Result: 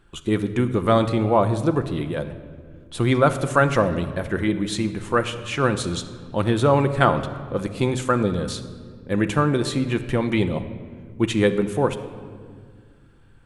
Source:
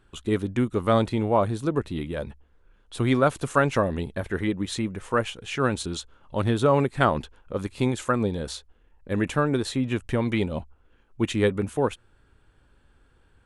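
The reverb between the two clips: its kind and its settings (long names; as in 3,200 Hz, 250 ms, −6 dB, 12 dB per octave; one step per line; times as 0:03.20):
rectangular room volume 3,000 cubic metres, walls mixed, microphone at 0.79 metres
level +3 dB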